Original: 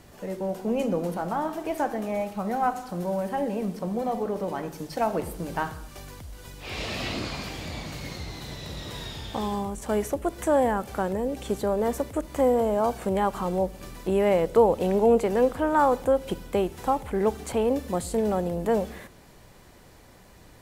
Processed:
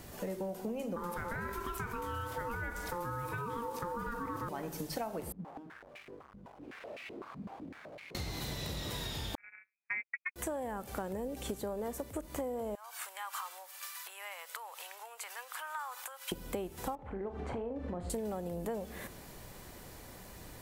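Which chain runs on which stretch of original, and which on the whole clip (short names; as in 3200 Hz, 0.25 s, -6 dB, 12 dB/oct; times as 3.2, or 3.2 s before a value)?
0.96–4.49 ring modulator 700 Hz + fast leveller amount 50%
5.32–8.15 half-waves squared off + compressor 16:1, threshold -34 dBFS + stepped band-pass 7.9 Hz 200–2300 Hz
9.35–10.36 gate -25 dBFS, range -59 dB + inverted band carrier 2500 Hz
12.75–16.32 compressor, threshold -28 dBFS + HPF 1100 Hz 24 dB/oct
16.95–18.1 LPF 1700 Hz + compressor 4:1, threshold -33 dBFS + flutter echo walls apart 6.8 m, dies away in 0.26 s
whole clip: high shelf 11000 Hz +11.5 dB; compressor 10:1, threshold -36 dBFS; gain +1 dB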